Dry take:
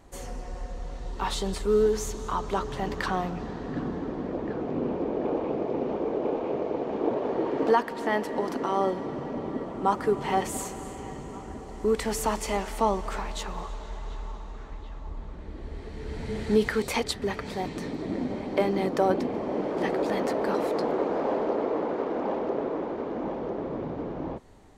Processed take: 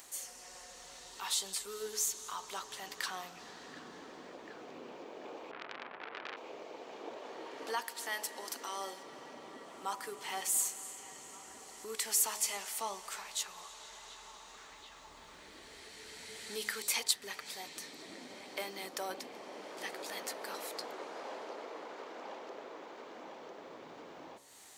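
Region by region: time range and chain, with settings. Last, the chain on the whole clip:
0:05.51–0:06.37: Butterworth low-pass 2,800 Hz + low-shelf EQ 200 Hz +9.5 dB + saturating transformer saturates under 1,600 Hz
0:07.82–0:09.03: high-pass filter 160 Hz + bass and treble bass −1 dB, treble +5 dB
whole clip: first difference; hum removal 70.43 Hz, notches 16; upward compression, threshold −49 dBFS; level +4.5 dB

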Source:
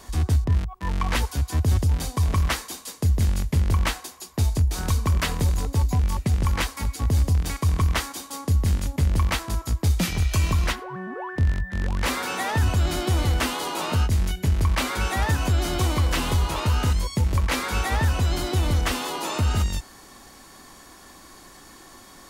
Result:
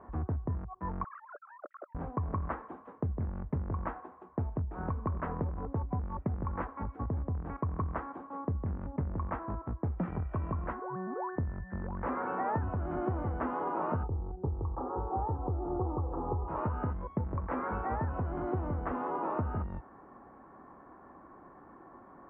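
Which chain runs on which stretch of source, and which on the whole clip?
0:01.04–0:01.95: three sine waves on the formant tracks + pair of resonant band-passes 890 Hz, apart 1.2 octaves + downward compressor 5 to 1, threshold −39 dBFS
0:14.03–0:16.48: Butterworth low-pass 1,100 Hz + comb filter 2.4 ms, depth 59%
whole clip: inverse Chebyshev low-pass filter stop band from 4,300 Hz, stop band 60 dB; downward compressor 3 to 1, threshold −24 dBFS; high-pass filter 150 Hz 6 dB per octave; level −2.5 dB

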